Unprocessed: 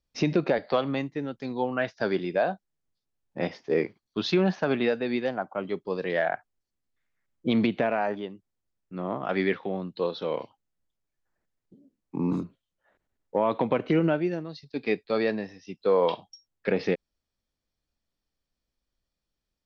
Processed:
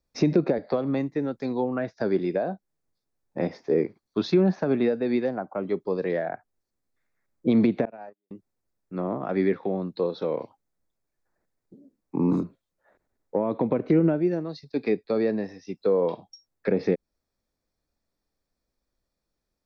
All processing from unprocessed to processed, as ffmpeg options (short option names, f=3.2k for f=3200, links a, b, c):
-filter_complex "[0:a]asettb=1/sr,asplit=3[a][b][c];[a]atrim=end=7.854[d];[b]atrim=start=7.85:end=8.31,asetpts=PTS-STARTPTS,afade=t=in:d=0.004:c=qsin,afade=t=out:st=0.456:d=0.004:c=qsin,agate=range=-58dB:threshold=-25dB:ratio=16:release=100:detection=peak,highpass=140,acompressor=threshold=-45dB:ratio=2:attack=3.2:release=140:knee=1:detection=peak[e];[c]atrim=start=8.306[f];[d][e]acrossfade=d=0.004:c1=hsin:c2=qsin[g];[g][f]acrossfade=d=0.004:c1=qsin:c2=hsin,equalizer=f=3k:w=5.7:g=-13,acrossover=split=390[h][i];[i]acompressor=threshold=-35dB:ratio=6[j];[h][j]amix=inputs=2:normalize=0,equalizer=f=490:w=0.56:g=5,volume=1.5dB"